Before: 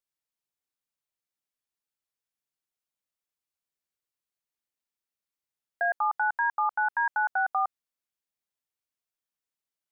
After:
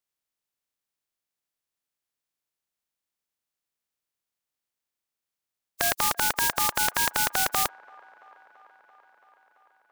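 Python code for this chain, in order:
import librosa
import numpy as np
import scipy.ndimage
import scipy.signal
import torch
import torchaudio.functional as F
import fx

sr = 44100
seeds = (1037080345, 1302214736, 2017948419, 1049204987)

y = fx.spec_flatten(x, sr, power=0.21)
y = fx.echo_wet_bandpass(y, sr, ms=336, feedback_pct=75, hz=840.0, wet_db=-23.5)
y = F.gain(torch.from_numpy(y), 3.0).numpy()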